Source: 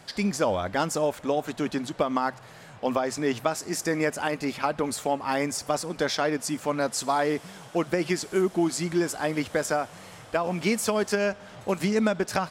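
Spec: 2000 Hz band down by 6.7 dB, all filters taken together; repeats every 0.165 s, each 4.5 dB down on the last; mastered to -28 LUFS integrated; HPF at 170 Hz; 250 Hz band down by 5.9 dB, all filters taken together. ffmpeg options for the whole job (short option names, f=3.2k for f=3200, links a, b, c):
-af "highpass=170,equalizer=f=250:t=o:g=-7,equalizer=f=2k:t=o:g=-9,aecho=1:1:165|330|495|660|825|990|1155|1320|1485:0.596|0.357|0.214|0.129|0.0772|0.0463|0.0278|0.0167|0.01,volume=0.5dB"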